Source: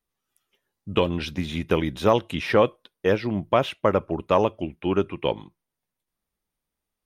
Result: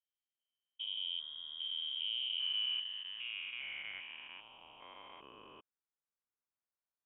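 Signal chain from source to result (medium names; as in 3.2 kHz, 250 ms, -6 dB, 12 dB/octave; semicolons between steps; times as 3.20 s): spectrogram pixelated in time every 400 ms; band-pass sweep 380 Hz -> 2.5 kHz, 2.20–4.64 s; frequency inversion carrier 3.5 kHz; trim -6 dB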